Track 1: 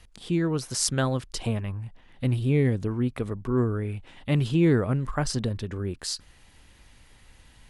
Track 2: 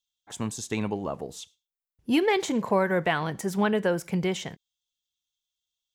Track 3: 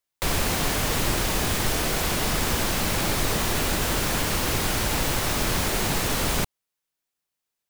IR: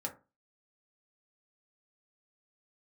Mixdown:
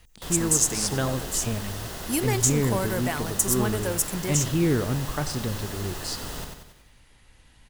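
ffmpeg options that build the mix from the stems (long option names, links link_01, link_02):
-filter_complex "[0:a]volume=-2dB,asplit=2[link_01][link_02];[link_02]volume=-15dB[link_03];[1:a]aexciter=amount=14:drive=4.9:freq=5300,volume=-5dB[link_04];[2:a]bandreject=frequency=2300:width=6.2,volume=-12.5dB,asplit=2[link_05][link_06];[link_06]volume=-4.5dB[link_07];[link_03][link_07]amix=inputs=2:normalize=0,aecho=0:1:93|186|279|372|465|558|651:1|0.49|0.24|0.118|0.0576|0.0282|0.0138[link_08];[link_01][link_04][link_05][link_08]amix=inputs=4:normalize=0"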